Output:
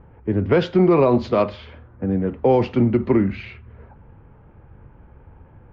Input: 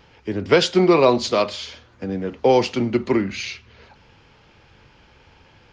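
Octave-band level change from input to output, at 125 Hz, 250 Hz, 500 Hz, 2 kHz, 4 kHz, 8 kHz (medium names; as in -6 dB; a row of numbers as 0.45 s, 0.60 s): +6.0 dB, +2.5 dB, -0.5 dB, -6.0 dB, -12.5 dB, no reading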